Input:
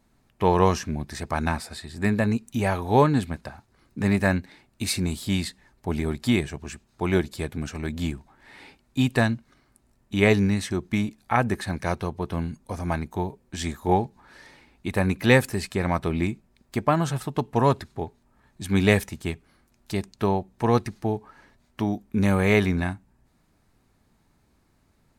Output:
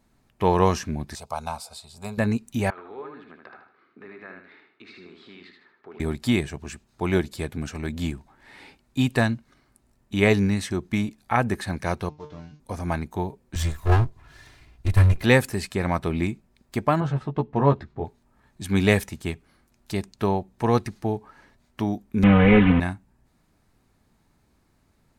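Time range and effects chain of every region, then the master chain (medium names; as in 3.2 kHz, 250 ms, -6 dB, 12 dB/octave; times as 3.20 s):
1.15–2.18 s: bass shelf 240 Hz -12 dB + static phaser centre 750 Hz, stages 4
2.70–6.00 s: compression 4:1, threshold -38 dBFS + cabinet simulation 390–3200 Hz, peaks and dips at 400 Hz +7 dB, 590 Hz -7 dB, 860 Hz -6 dB, 1.3 kHz +7 dB, 3 kHz -4 dB + feedback delay 77 ms, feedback 34%, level -5 dB
12.09–12.60 s: CVSD coder 32 kbps + feedback comb 150 Hz, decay 0.31 s, mix 90%
13.55–15.23 s: comb filter that takes the minimum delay 2.9 ms + resonant low shelf 180 Hz +11 dB, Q 1.5
17.00–18.05 s: tape spacing loss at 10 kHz 29 dB + doubling 14 ms -5 dB
22.23–22.80 s: one-bit delta coder 16 kbps, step -21.5 dBFS + bass shelf 160 Hz +9.5 dB + comb 4 ms, depth 97%
whole clip: none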